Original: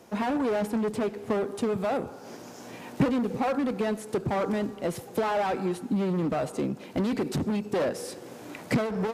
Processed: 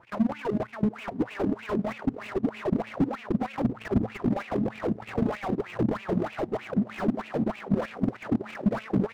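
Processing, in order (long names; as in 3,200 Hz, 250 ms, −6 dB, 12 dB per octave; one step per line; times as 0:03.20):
each half-wave held at its own peak
wind on the microphone 140 Hz −27 dBFS
on a send: feedback delay with all-pass diffusion 963 ms, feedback 53%, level −3.5 dB
on the sum: tube saturation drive 12 dB, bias 0.65
LFO wah 3.2 Hz 210–2,600 Hz, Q 6.2
hum removal 109 Hz, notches 2
output level in coarse steps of 10 dB
transient designer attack +11 dB, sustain −7 dB
parametric band 120 Hz +8 dB 0.27 octaves
boost into a limiter +19 dB
slew-rate limiting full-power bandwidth 64 Hz
level −6.5 dB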